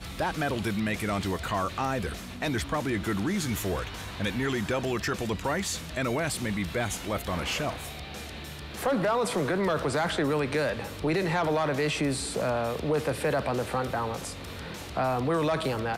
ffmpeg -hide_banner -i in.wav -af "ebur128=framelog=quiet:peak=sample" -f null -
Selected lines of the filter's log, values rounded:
Integrated loudness:
  I:         -29.2 LUFS
  Threshold: -39.3 LUFS
Loudness range:
  LRA:         3.0 LU
  Threshold: -49.2 LUFS
  LRA low:   -30.5 LUFS
  LRA high:  -27.5 LUFS
Sample peak:
  Peak:      -17.0 dBFS